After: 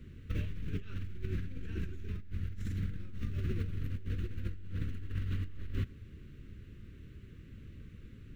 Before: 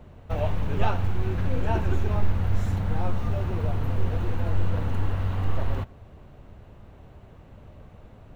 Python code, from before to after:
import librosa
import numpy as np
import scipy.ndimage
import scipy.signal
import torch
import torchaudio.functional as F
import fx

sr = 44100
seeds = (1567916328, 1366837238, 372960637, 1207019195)

y = scipy.signal.sosfilt(scipy.signal.cheby1(2, 1.0, [330.0, 1800.0], 'bandstop', fs=sr, output='sos'), x)
y = fx.over_compress(y, sr, threshold_db=-29.0, ratio=-1.0)
y = y * 10.0 ** (-7.0 / 20.0)